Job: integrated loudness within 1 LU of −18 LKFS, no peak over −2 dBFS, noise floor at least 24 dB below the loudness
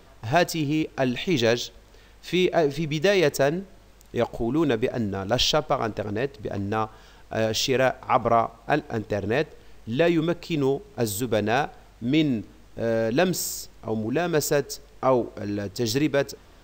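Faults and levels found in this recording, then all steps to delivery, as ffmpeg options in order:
integrated loudness −25.0 LKFS; sample peak −6.5 dBFS; target loudness −18.0 LKFS
→ -af "volume=7dB,alimiter=limit=-2dB:level=0:latency=1"

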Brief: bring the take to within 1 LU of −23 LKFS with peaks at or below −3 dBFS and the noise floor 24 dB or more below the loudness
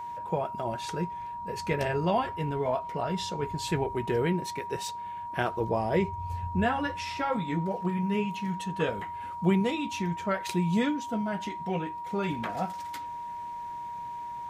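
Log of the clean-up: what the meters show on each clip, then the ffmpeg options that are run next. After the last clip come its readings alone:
interfering tone 950 Hz; level of the tone −35 dBFS; integrated loudness −31.0 LKFS; sample peak −12.0 dBFS; target loudness −23.0 LKFS
→ -af "bandreject=frequency=950:width=30"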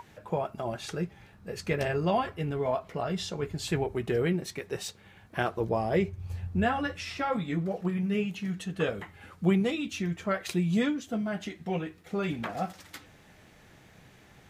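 interfering tone none found; integrated loudness −31.0 LKFS; sample peak −12.5 dBFS; target loudness −23.0 LKFS
→ -af "volume=8dB"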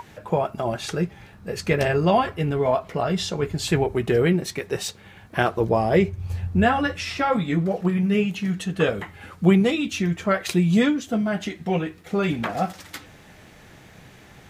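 integrated loudness −23.0 LKFS; sample peak −4.5 dBFS; background noise floor −48 dBFS

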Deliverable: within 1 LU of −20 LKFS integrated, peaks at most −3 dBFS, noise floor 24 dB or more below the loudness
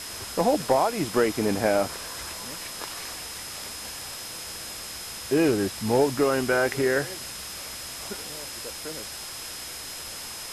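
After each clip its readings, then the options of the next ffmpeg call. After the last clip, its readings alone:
interfering tone 5,100 Hz; level of the tone −41 dBFS; background noise floor −38 dBFS; target noise floor −52 dBFS; integrated loudness −27.5 LKFS; sample peak −10.5 dBFS; target loudness −20.0 LKFS
→ -af "bandreject=frequency=5100:width=30"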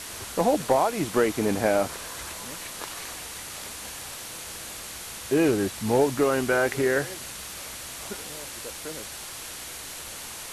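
interfering tone none found; background noise floor −39 dBFS; target noise floor −52 dBFS
→ -af "afftdn=noise_reduction=13:noise_floor=-39"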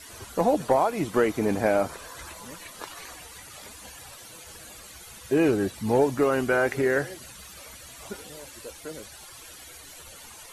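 background noise floor −46 dBFS; target noise floor −49 dBFS
→ -af "afftdn=noise_reduction=6:noise_floor=-46"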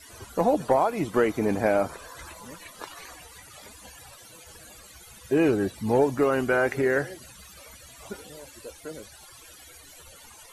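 background noise floor −49 dBFS; integrated loudness −24.5 LKFS; sample peak −10.5 dBFS; target loudness −20.0 LKFS
→ -af "volume=4.5dB"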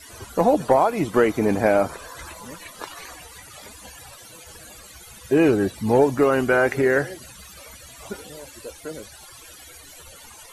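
integrated loudness −20.0 LKFS; sample peak −6.0 dBFS; background noise floor −45 dBFS

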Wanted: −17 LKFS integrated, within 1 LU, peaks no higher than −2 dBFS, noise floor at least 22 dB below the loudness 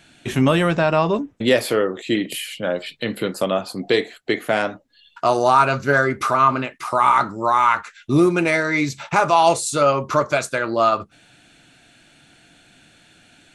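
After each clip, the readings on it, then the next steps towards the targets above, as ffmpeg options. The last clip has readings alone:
integrated loudness −19.5 LKFS; sample peak −3.5 dBFS; target loudness −17.0 LKFS
→ -af "volume=2.5dB,alimiter=limit=-2dB:level=0:latency=1"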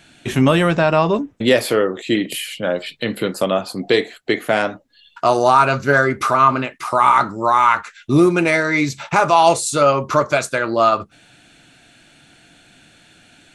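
integrated loudness −17.0 LKFS; sample peak −2.0 dBFS; background noise floor −52 dBFS

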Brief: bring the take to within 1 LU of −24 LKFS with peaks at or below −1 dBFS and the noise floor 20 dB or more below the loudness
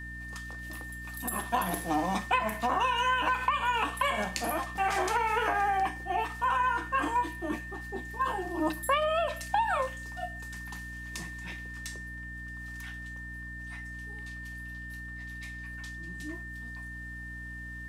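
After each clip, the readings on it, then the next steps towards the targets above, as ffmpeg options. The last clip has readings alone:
mains hum 60 Hz; hum harmonics up to 300 Hz; level of the hum −42 dBFS; interfering tone 1,800 Hz; level of the tone −41 dBFS; integrated loudness −32.0 LKFS; sample peak −13.5 dBFS; target loudness −24.0 LKFS
→ -af "bandreject=frequency=60:width_type=h:width=6,bandreject=frequency=120:width_type=h:width=6,bandreject=frequency=180:width_type=h:width=6,bandreject=frequency=240:width_type=h:width=6,bandreject=frequency=300:width_type=h:width=6"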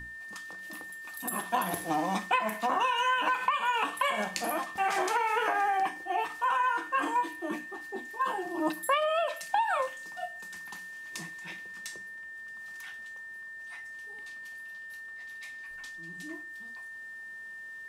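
mains hum none found; interfering tone 1,800 Hz; level of the tone −41 dBFS
→ -af "bandreject=frequency=1800:width=30"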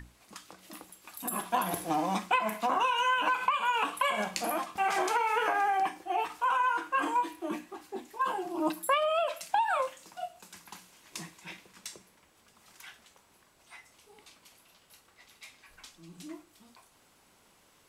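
interfering tone none found; integrated loudness −30.0 LKFS; sample peak −13.5 dBFS; target loudness −24.0 LKFS
→ -af "volume=6dB"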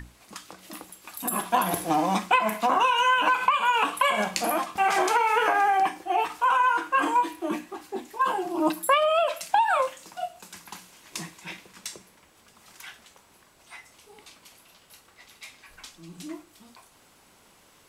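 integrated loudness −24.0 LKFS; sample peak −7.5 dBFS; background noise floor −58 dBFS

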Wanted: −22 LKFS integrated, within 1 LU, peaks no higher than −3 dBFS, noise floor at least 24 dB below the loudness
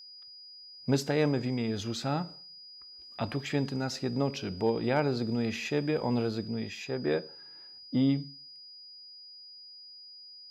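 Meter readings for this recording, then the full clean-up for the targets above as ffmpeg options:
interfering tone 4,900 Hz; level of the tone −47 dBFS; integrated loudness −31.0 LKFS; sample peak −15.5 dBFS; target loudness −22.0 LKFS
→ -af "bandreject=frequency=4900:width=30"
-af "volume=9dB"

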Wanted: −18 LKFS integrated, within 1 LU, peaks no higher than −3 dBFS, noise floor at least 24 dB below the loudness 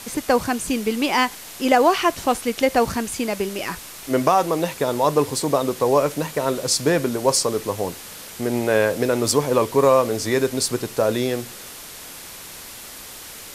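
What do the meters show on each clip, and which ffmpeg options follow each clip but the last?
background noise floor −38 dBFS; target noise floor −45 dBFS; integrated loudness −21.0 LKFS; sample peak −2.5 dBFS; target loudness −18.0 LKFS
→ -af "afftdn=noise_reduction=7:noise_floor=-38"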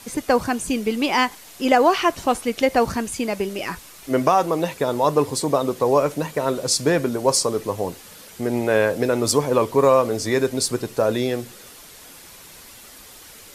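background noise floor −44 dBFS; target noise floor −45 dBFS
→ -af "afftdn=noise_reduction=6:noise_floor=-44"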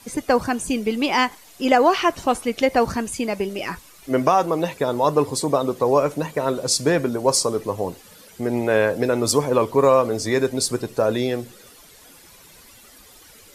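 background noise floor −48 dBFS; integrated loudness −21.0 LKFS; sample peak −2.5 dBFS; target loudness −18.0 LKFS
→ -af "volume=3dB,alimiter=limit=-3dB:level=0:latency=1"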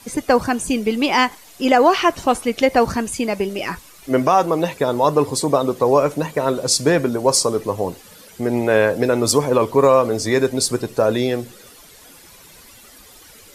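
integrated loudness −18.0 LKFS; sample peak −3.0 dBFS; background noise floor −45 dBFS

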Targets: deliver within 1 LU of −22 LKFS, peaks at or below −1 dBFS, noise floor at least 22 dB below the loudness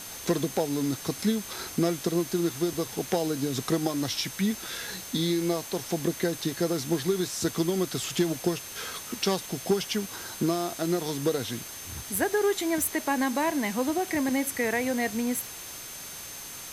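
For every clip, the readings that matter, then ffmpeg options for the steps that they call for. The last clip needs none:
interfering tone 6,300 Hz; level of the tone −45 dBFS; background noise floor −41 dBFS; target noise floor −51 dBFS; integrated loudness −28.5 LKFS; sample peak −13.0 dBFS; target loudness −22.0 LKFS
→ -af "bandreject=frequency=6300:width=30"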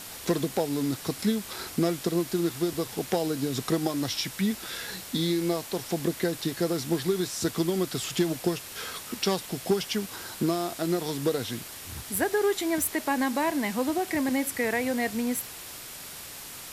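interfering tone none found; background noise floor −42 dBFS; target noise floor −51 dBFS
→ -af "afftdn=noise_reduction=9:noise_floor=-42"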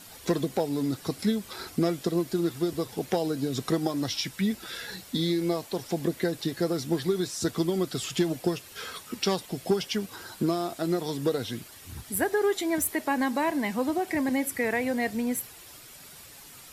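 background noise floor −48 dBFS; target noise floor −51 dBFS
→ -af "afftdn=noise_reduction=6:noise_floor=-48"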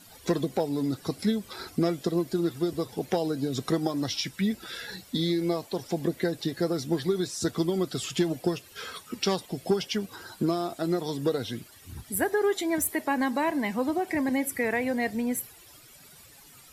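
background noise floor −53 dBFS; integrated loudness −29.0 LKFS; sample peak −13.5 dBFS; target loudness −22.0 LKFS
→ -af "volume=7dB"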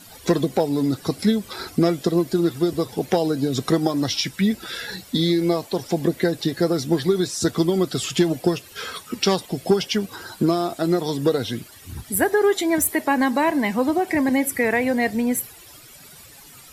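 integrated loudness −22.0 LKFS; sample peak −6.5 dBFS; background noise floor −46 dBFS

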